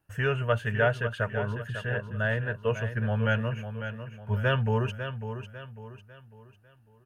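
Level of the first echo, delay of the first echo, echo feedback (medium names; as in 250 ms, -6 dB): -9.5 dB, 549 ms, 39%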